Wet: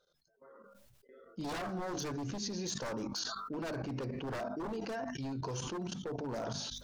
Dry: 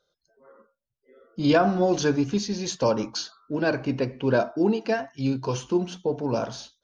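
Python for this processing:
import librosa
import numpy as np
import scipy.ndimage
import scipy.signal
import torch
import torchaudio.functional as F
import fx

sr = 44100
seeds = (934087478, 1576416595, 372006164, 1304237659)

y = 10.0 ** (-20.5 / 20.0) * (np.abs((x / 10.0 ** (-20.5 / 20.0) + 3.0) % 4.0 - 2.0) - 1.0)
y = fx.dynamic_eq(y, sr, hz=2700.0, q=1.2, threshold_db=-45.0, ratio=4.0, max_db=-6)
y = fx.level_steps(y, sr, step_db=19)
y = fx.hum_notches(y, sr, base_hz=50, count=5)
y = fx.sustainer(y, sr, db_per_s=24.0)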